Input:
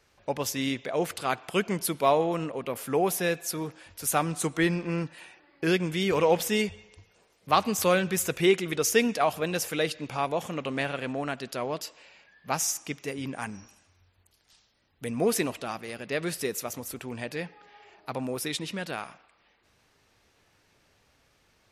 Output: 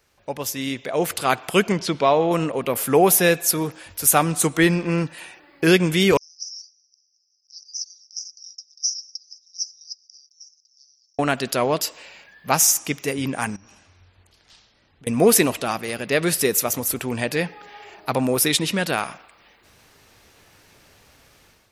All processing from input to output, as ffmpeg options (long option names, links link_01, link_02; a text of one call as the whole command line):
ffmpeg -i in.wav -filter_complex "[0:a]asettb=1/sr,asplit=3[link_01][link_02][link_03];[link_01]atrim=end=1.724[link_04];[link_02]atrim=start=1.72:end=2.31,asetpts=PTS-STARTPTS,afade=type=in:duration=0.004:curve=qsin,afade=type=out:start_time=0.586:duration=0.004:curve=qsin,lowpass=frequency=5800:width=0.5412,lowpass=frequency=5800:width=1.3066,acompressor=threshold=-27dB:ratio=1.5:attack=3.2:release=140:knee=1:detection=peak[link_05];[link_03]atrim=start=2.306[link_06];[link_04][link_05]acrossfade=duration=0.004:curve1=hsin:curve2=qsin[link_07];[link_07][link_06]acrossfade=duration=0.004:curve1=qsin:curve2=hsin,asettb=1/sr,asplit=3[link_08][link_09][link_10];[link_08]atrim=end=6.174[link_11];[link_09]atrim=start=6.17:end=11.19,asetpts=PTS-STARTPTS,afade=type=in:duration=0.004:curve=qsin,afade=type=out:start_time=5.016:duration=0.004:curve=qsin,asuperpass=centerf=5400:order=8:qfactor=4.9,aderivative[link_12];[link_10]atrim=start=11.186[link_13];[link_11][link_12]acrossfade=duration=0.004:curve1=hsin:curve2=qsin[link_14];[link_14][link_13]acrossfade=duration=0.004:curve1=qsin:curve2=hsin,asettb=1/sr,asplit=3[link_15][link_16][link_17];[link_15]atrim=end=13.564[link_18];[link_16]atrim=start=13.56:end=15.07,asetpts=PTS-STARTPTS,afade=type=in:duration=0.004:curve=qsin,afade=type=out:start_time=1.506:duration=0.004:curve=qsin,lowpass=5000,acompressor=threshold=-55dB:ratio=10:attack=3.2:release=140:knee=1:detection=peak[link_19];[link_17]atrim=start=15.066[link_20];[link_18][link_19]acrossfade=duration=0.004:curve1=hsin:curve2=qsin[link_21];[link_21][link_20]acrossfade=duration=0.004:curve1=qsin:curve2=hsin,highshelf=frequency=11000:gain=11,dynaudnorm=framelen=650:gausssize=3:maxgain=11.5dB" out.wav